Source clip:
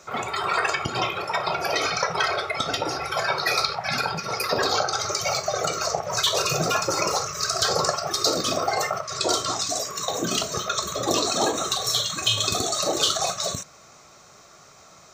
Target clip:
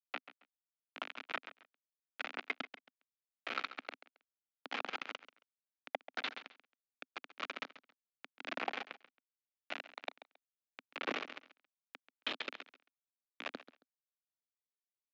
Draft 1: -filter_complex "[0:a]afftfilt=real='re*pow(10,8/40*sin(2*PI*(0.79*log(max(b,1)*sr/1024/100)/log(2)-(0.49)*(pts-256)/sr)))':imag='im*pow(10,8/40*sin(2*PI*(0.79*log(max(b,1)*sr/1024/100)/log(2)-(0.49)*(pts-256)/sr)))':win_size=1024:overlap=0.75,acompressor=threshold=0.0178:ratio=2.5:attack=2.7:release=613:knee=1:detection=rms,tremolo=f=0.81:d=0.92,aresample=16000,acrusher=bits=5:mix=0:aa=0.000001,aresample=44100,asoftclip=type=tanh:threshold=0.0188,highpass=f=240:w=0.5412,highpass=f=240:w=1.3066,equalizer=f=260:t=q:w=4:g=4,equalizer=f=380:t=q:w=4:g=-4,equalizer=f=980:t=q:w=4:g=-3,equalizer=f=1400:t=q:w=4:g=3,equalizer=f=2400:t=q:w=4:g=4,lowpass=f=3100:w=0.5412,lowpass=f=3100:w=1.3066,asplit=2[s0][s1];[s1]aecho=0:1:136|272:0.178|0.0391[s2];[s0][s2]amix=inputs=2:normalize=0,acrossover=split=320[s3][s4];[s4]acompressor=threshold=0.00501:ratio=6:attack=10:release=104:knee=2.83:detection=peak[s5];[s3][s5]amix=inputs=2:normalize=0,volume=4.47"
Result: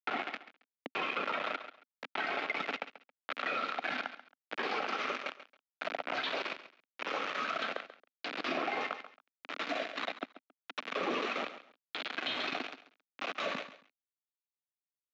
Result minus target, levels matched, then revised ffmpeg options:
compression: peak gain reduction -7 dB
-filter_complex "[0:a]afftfilt=real='re*pow(10,8/40*sin(2*PI*(0.79*log(max(b,1)*sr/1024/100)/log(2)-(0.49)*(pts-256)/sr)))':imag='im*pow(10,8/40*sin(2*PI*(0.79*log(max(b,1)*sr/1024/100)/log(2)-(0.49)*(pts-256)/sr)))':win_size=1024:overlap=0.75,acompressor=threshold=0.00473:ratio=2.5:attack=2.7:release=613:knee=1:detection=rms,tremolo=f=0.81:d=0.92,aresample=16000,acrusher=bits=5:mix=0:aa=0.000001,aresample=44100,asoftclip=type=tanh:threshold=0.0188,highpass=f=240:w=0.5412,highpass=f=240:w=1.3066,equalizer=f=260:t=q:w=4:g=4,equalizer=f=380:t=q:w=4:g=-4,equalizer=f=980:t=q:w=4:g=-3,equalizer=f=1400:t=q:w=4:g=3,equalizer=f=2400:t=q:w=4:g=4,lowpass=f=3100:w=0.5412,lowpass=f=3100:w=1.3066,asplit=2[s0][s1];[s1]aecho=0:1:136|272:0.178|0.0391[s2];[s0][s2]amix=inputs=2:normalize=0,acrossover=split=320[s3][s4];[s4]acompressor=threshold=0.00501:ratio=6:attack=10:release=104:knee=2.83:detection=peak[s5];[s3][s5]amix=inputs=2:normalize=0,volume=4.47"

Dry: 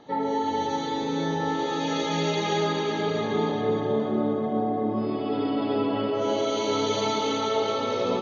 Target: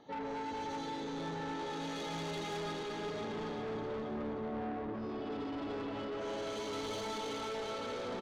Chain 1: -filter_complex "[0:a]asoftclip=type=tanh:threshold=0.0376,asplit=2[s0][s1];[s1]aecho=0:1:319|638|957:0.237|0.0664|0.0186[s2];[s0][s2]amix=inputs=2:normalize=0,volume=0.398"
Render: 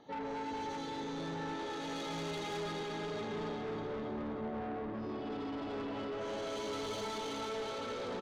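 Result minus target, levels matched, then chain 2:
echo 210 ms early
-filter_complex "[0:a]asoftclip=type=tanh:threshold=0.0376,asplit=2[s0][s1];[s1]aecho=0:1:529|1058|1587:0.237|0.0664|0.0186[s2];[s0][s2]amix=inputs=2:normalize=0,volume=0.398"

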